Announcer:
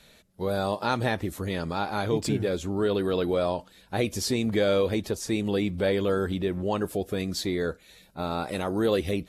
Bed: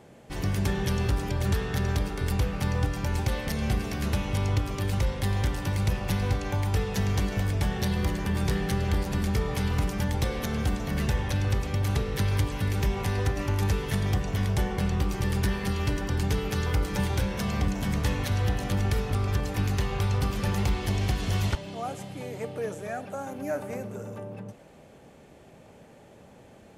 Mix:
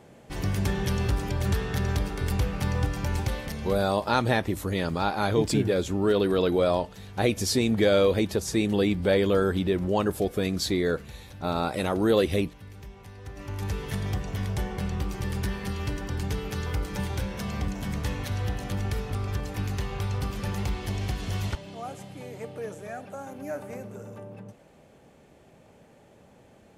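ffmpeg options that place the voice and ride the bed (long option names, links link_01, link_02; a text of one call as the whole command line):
ffmpeg -i stem1.wav -i stem2.wav -filter_complex "[0:a]adelay=3250,volume=2.5dB[link_01];[1:a]volume=14.5dB,afade=type=out:start_time=3.15:duration=0.79:silence=0.125893,afade=type=in:start_time=13.21:duration=0.63:silence=0.188365[link_02];[link_01][link_02]amix=inputs=2:normalize=0" out.wav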